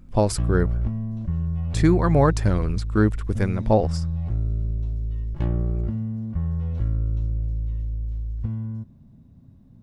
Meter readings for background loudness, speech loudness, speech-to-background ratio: -28.0 LUFS, -22.5 LUFS, 5.5 dB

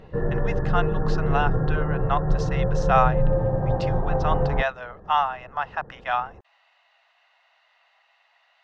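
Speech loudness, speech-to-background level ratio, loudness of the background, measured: -27.5 LUFS, -2.5 dB, -25.0 LUFS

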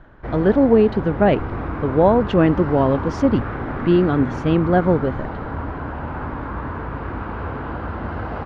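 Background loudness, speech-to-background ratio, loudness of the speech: -28.0 LUFS, 9.5 dB, -18.5 LUFS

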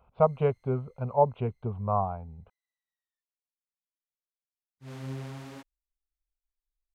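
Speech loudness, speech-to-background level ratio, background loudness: -28.5 LUFS, 13.5 dB, -42.0 LUFS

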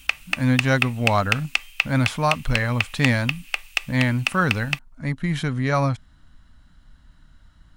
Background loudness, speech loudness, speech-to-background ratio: -26.0 LUFS, -23.5 LUFS, 2.5 dB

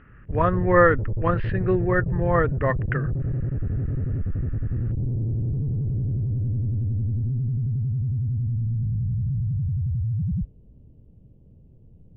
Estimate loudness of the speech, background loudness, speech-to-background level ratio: -23.0 LUFS, -27.0 LUFS, 4.0 dB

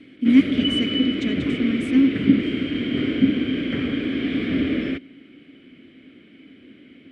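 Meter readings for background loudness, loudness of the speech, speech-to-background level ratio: -23.0 LUFS, -22.0 LUFS, 1.0 dB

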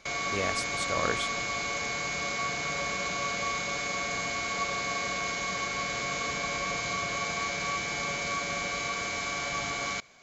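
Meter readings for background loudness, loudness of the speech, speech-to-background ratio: -30.5 LUFS, -34.5 LUFS, -4.0 dB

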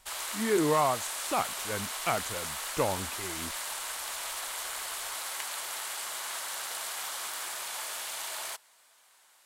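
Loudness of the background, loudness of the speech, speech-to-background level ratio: -34.5 LUFS, -31.0 LUFS, 3.5 dB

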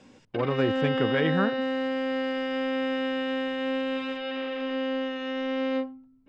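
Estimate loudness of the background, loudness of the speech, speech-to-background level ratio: -29.5 LUFS, -28.5 LUFS, 1.0 dB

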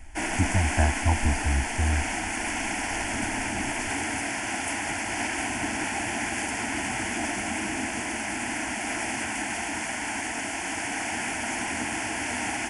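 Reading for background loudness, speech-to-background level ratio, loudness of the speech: -29.0 LUFS, 1.5 dB, -27.5 LUFS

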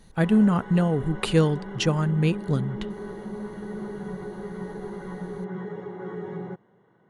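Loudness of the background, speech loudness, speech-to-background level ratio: -36.0 LUFS, -23.5 LUFS, 12.5 dB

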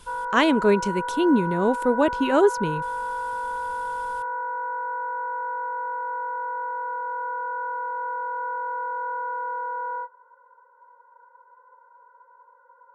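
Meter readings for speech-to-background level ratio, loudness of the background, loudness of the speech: 7.5 dB, -29.5 LUFS, -22.0 LUFS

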